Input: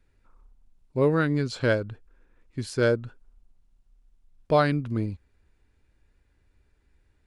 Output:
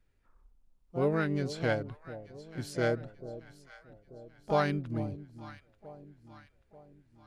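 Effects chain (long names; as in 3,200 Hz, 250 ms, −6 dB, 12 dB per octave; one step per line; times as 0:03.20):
pitch-shifted copies added +5 semitones −9 dB
delay that swaps between a low-pass and a high-pass 443 ms, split 830 Hz, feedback 67%, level −13.5 dB
level −7 dB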